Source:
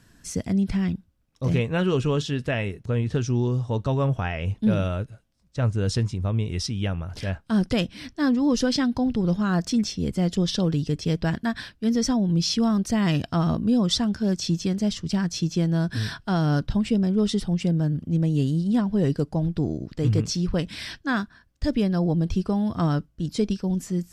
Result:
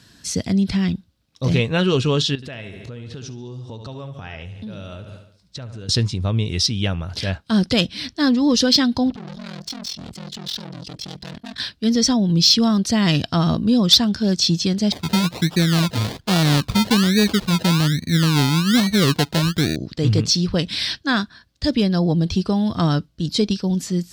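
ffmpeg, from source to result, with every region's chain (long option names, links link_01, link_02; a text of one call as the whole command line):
ffmpeg -i in.wav -filter_complex "[0:a]asettb=1/sr,asplit=3[link_01][link_02][link_03];[link_01]atrim=end=2.354[link_04];[link_02]atrim=start=2.35:end=5.89,asetpts=PTS-STARTPTS,afade=type=in:duration=0.004:curve=qsin,afade=type=out:start_time=3.536:duration=0.004:curve=qsin,aecho=1:1:71|142|213|284|355:0.282|0.135|0.0649|0.0312|0.015,atrim=end_sample=156114,acompressor=threshold=-36dB:ratio=6:attack=3.2:release=140:knee=1:detection=peak[link_05];[link_03]atrim=start=5.886[link_06];[link_04][link_05]acrossfade=duration=0.004:curve1=hsin:curve2=qsin[link_07];[link_07][link_06]acrossfade=duration=0.004:curve1=qsin:curve2=hsin,asettb=1/sr,asplit=3[link_08][link_09][link_10];[link_08]atrim=end=9.104[link_11];[link_09]atrim=start=9.1:end=11.6,asetpts=PTS-STARTPTS,afade=type=in:duration=0.004:curve=qsin,afade=type=out:start_time=2.496:duration=0.004:curve=qsin,aeval=exprs='(tanh(56.2*val(0)+0.35)-tanh(0.35))/56.2':channel_layout=same,aeval=exprs='val(0)*sin(2*PI*21*n/s)':channel_layout=same[link_12];[link_10]atrim=start=11.596[link_13];[link_11][link_12]acrossfade=duration=0.004:curve1=hsin:curve2=qsin[link_14];[link_14][link_13]acrossfade=duration=0.004:curve1=qsin:curve2=hsin,asettb=1/sr,asplit=3[link_15][link_16][link_17];[link_15]atrim=end=14.924[link_18];[link_16]atrim=start=14.92:end=19.76,asetpts=PTS-STARTPTS,afade=type=in:duration=0.004:curve=qsin,afade=type=out:start_time=4.836:duration=0.004:curve=qsin,aemphasis=mode=reproduction:type=75fm,acrusher=samples=30:mix=1:aa=0.000001:lfo=1:lforange=18:lforate=1.2[link_19];[link_17]atrim=start=19.756[link_20];[link_18][link_19]acrossfade=duration=0.004:curve1=hsin:curve2=qsin[link_21];[link_21][link_20]acrossfade=duration=0.004:curve1=qsin:curve2=hsin,highpass=64,equalizer=frequency=4100:width=1.4:gain=11.5,acontrast=38,volume=-1dB" out.wav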